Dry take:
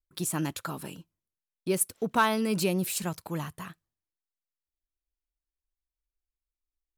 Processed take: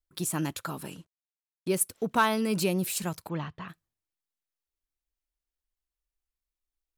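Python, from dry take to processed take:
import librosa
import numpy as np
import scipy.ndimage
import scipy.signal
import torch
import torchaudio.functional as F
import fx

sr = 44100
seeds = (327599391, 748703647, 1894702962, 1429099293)

y = fx.cvsd(x, sr, bps=64000, at=(0.91, 1.68))
y = fx.lowpass(y, sr, hz=4200.0, slope=24, at=(3.28, 3.68), fade=0.02)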